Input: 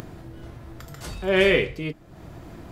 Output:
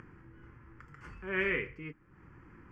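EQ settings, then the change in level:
low-pass filter 2,400 Hz 12 dB per octave
low-shelf EQ 400 Hz −9.5 dB
phaser with its sweep stopped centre 1,600 Hz, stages 4
−5.0 dB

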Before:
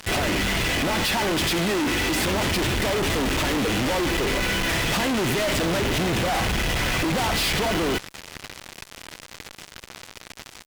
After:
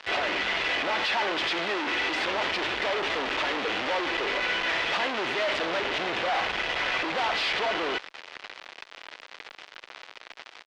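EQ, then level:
high-frequency loss of the air 51 metres
three-way crossover with the lows and the highs turned down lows −18 dB, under 350 Hz, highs −24 dB, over 4,800 Hz
low-shelf EQ 440 Hz −6 dB
0.0 dB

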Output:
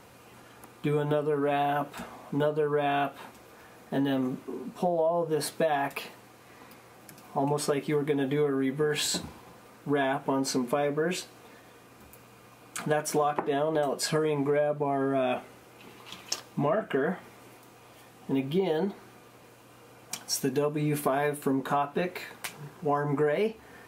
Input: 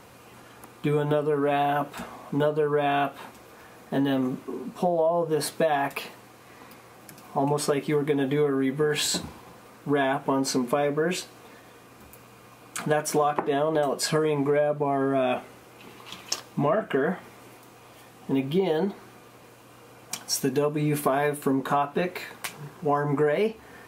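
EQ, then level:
notch filter 1,100 Hz, Q 27
−3.0 dB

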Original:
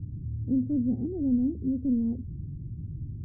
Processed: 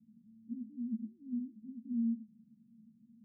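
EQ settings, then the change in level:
flat-topped band-pass 220 Hz, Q 7.6
−3.5 dB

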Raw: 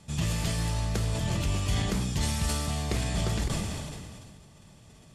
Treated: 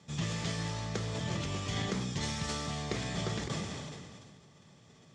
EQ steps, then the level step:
loudspeaker in its box 160–6,300 Hz, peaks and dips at 210 Hz −4 dB, 310 Hz −4 dB, 650 Hz −5 dB, 930 Hz −4 dB, 2,700 Hz −6 dB, 4,500 Hz −5 dB
parametric band 1,500 Hz −3.5 dB 0.21 octaves
0.0 dB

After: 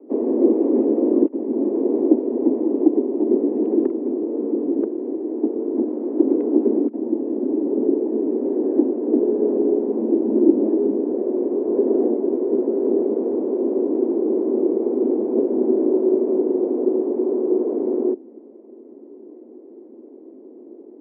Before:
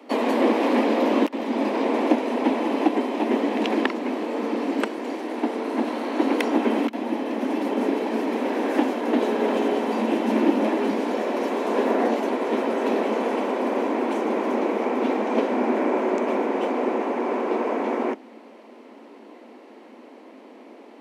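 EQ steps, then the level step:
high-pass filter 220 Hz
low-pass with resonance 370 Hz, resonance Q 4
high-frequency loss of the air 76 metres
−2.0 dB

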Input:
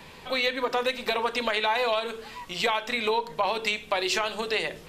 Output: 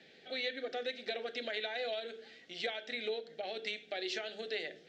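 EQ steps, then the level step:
Butterworth band-reject 1,000 Hz, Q 1.5
loudspeaker in its box 290–5,300 Hz, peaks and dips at 560 Hz −4 dB, 1,300 Hz −8 dB, 2,600 Hz −7 dB, 4,900 Hz −4 dB
−8.0 dB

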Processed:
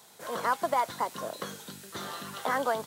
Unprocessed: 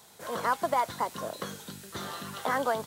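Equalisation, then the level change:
high-pass filter 160 Hz 6 dB per octave
0.0 dB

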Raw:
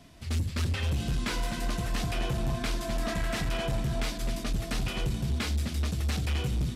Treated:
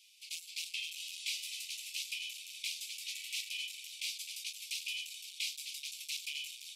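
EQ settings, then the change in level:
Butterworth high-pass 2,300 Hz 96 dB per octave
0.0 dB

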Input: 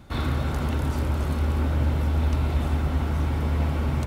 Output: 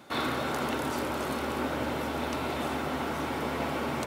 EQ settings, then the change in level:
high-pass filter 320 Hz 12 dB per octave
+3.0 dB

